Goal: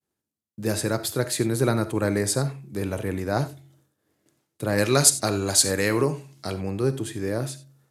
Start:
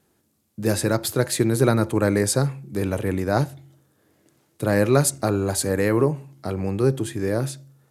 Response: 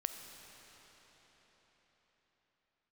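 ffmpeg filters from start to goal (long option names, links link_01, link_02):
-filter_complex "[0:a]agate=range=-33dB:threshold=-56dB:ratio=3:detection=peak,asetnsamples=nb_out_samples=441:pad=0,asendcmd='4.78 equalizer g 13.5;6.54 equalizer g 3',equalizer=frequency=5300:width=0.41:gain=2.5[link_01];[1:a]atrim=start_sample=2205,atrim=end_sample=4410[link_02];[link_01][link_02]afir=irnorm=-1:irlink=0,volume=-3dB"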